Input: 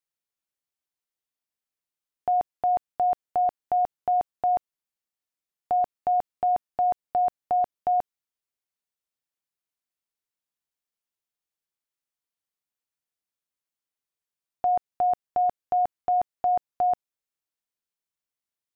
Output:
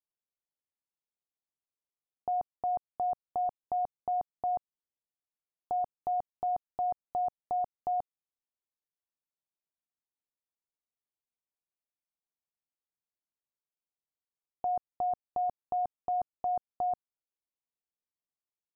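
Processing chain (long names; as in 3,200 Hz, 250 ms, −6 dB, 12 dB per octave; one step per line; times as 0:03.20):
low-pass filter 1,100 Hz 24 dB per octave
dynamic equaliser 360 Hz, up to −4 dB, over −38 dBFS, Q 0.72
level −6 dB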